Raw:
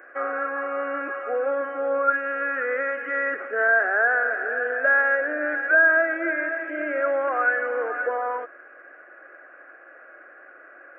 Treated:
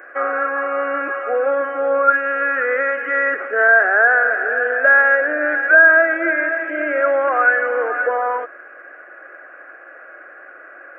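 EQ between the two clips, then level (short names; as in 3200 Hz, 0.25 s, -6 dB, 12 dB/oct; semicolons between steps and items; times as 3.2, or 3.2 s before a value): HPF 280 Hz 6 dB/oct; +7.5 dB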